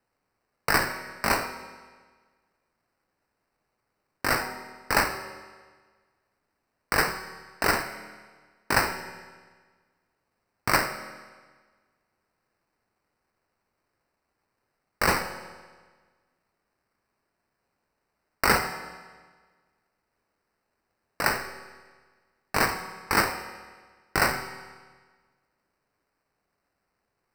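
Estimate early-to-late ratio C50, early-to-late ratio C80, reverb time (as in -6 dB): 10.0 dB, 11.5 dB, 1.5 s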